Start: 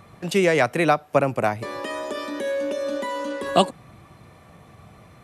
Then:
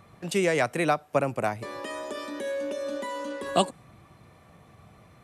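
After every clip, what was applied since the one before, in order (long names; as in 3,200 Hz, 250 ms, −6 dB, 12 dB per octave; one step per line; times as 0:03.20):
dynamic equaliser 8,300 Hz, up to +6 dB, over −50 dBFS, Q 1.5
level −5.5 dB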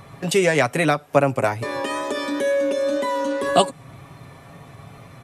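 comb filter 7.3 ms, depth 53%
tape wow and flutter 23 cents
in parallel at +1.5 dB: downward compressor, threshold −33 dBFS, peak gain reduction 16.5 dB
on the sum: level +3.5 dB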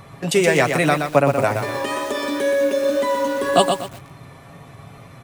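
feedback echo at a low word length 122 ms, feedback 35%, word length 6 bits, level −5.5 dB
level +1 dB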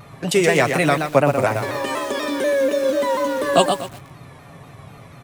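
pitch modulation by a square or saw wave saw down 4.1 Hz, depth 100 cents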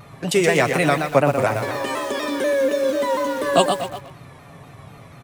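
far-end echo of a speakerphone 240 ms, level −12 dB
level −1 dB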